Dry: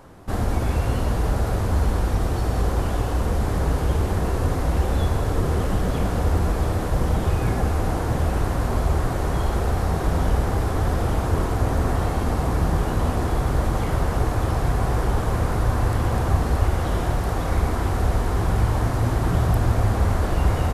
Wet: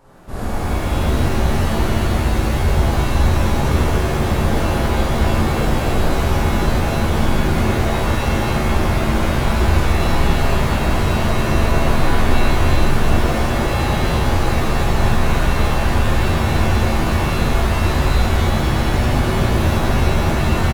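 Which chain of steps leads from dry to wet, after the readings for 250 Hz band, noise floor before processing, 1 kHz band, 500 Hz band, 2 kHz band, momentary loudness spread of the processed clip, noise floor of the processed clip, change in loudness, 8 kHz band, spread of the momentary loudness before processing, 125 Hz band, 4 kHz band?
+7.0 dB, -25 dBFS, +6.0 dB, +5.5 dB, +10.5 dB, 2 LU, -19 dBFS, +5.0 dB, +7.0 dB, 2 LU, +3.5 dB, +12.0 dB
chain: early reflections 51 ms -3.5 dB, 75 ms -3.5 dB; hard clipper -14 dBFS, distortion -14 dB; pitch-shifted reverb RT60 2.9 s, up +7 st, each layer -2 dB, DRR -7 dB; trim -7 dB

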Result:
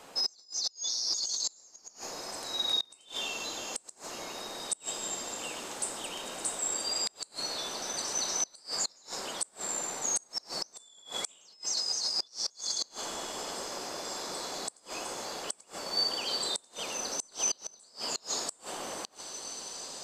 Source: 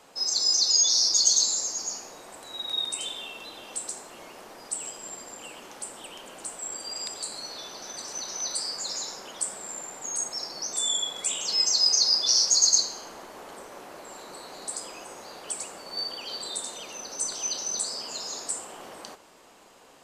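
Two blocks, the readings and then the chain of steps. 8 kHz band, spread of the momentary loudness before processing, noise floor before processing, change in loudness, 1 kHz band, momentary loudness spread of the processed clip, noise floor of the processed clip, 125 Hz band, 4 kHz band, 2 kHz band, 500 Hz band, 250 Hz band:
-7.0 dB, 23 LU, -53 dBFS, -8.0 dB, +1.0 dB, 10 LU, -61 dBFS, no reading, -6.5 dB, +1.0 dB, +1.0 dB, +1.0 dB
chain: compressor with a negative ratio -29 dBFS, ratio -1; echo that smears into a reverb 1999 ms, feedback 62%, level -13.5 dB; inverted gate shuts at -19 dBFS, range -29 dB

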